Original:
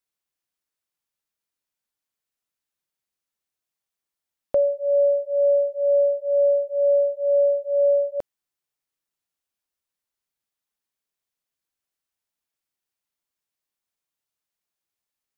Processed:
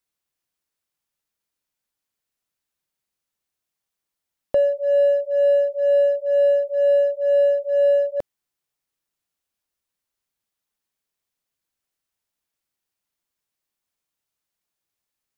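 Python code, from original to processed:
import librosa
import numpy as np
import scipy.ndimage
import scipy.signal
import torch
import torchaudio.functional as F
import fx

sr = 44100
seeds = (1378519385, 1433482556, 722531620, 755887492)

p1 = fx.low_shelf(x, sr, hz=240.0, db=3.0)
p2 = np.clip(p1, -10.0 ** (-24.0 / 20.0), 10.0 ** (-24.0 / 20.0))
y = p1 + (p2 * 10.0 ** (-9.0 / 20.0))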